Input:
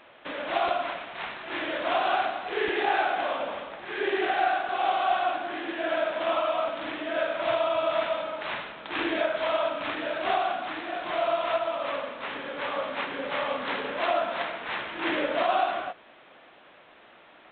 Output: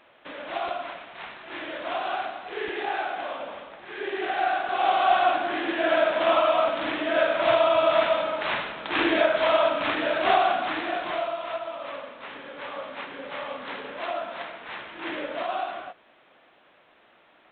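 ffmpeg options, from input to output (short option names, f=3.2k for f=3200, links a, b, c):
-af "volume=5.5dB,afade=t=in:st=4.13:d=1.15:silence=0.334965,afade=t=out:st=10.86:d=0.45:silence=0.298538"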